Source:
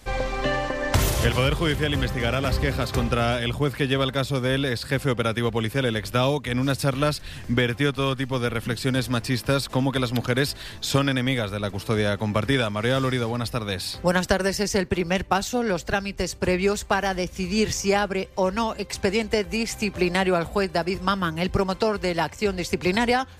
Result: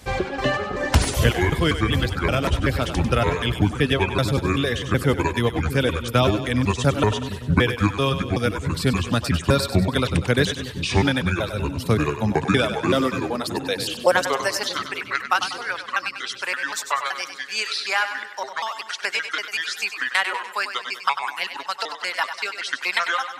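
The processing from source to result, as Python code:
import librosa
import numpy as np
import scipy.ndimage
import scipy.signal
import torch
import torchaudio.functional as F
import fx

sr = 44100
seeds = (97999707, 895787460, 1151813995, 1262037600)

p1 = fx.pitch_trill(x, sr, semitones=-6.0, every_ms=190)
p2 = fx.filter_sweep_highpass(p1, sr, from_hz=69.0, to_hz=1300.0, start_s=11.57, end_s=15.18, q=1.4)
p3 = fx.dereverb_blind(p2, sr, rt60_s=1.2)
p4 = p3 + fx.echo_split(p3, sr, split_hz=380.0, low_ms=634, high_ms=97, feedback_pct=52, wet_db=-9.5, dry=0)
y = p4 * 10.0 ** (3.5 / 20.0)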